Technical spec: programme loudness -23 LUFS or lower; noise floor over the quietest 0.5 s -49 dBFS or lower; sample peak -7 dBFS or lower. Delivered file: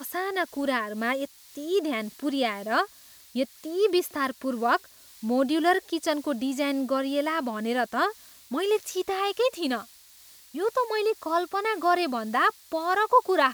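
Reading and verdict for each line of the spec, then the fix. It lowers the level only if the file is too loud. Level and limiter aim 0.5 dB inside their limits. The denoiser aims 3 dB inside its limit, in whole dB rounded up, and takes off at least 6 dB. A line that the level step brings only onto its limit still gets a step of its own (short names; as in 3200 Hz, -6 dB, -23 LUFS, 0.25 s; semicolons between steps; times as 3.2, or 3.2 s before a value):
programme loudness -27.0 LUFS: OK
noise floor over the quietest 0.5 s -52 dBFS: OK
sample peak -8.0 dBFS: OK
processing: none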